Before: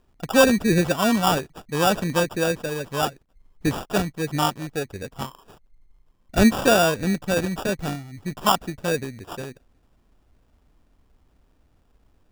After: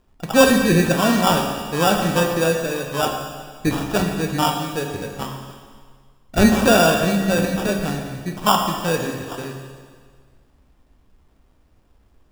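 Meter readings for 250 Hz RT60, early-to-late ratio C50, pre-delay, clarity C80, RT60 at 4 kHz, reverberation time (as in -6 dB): 1.7 s, 3.5 dB, 14 ms, 5.0 dB, 1.7 s, 1.7 s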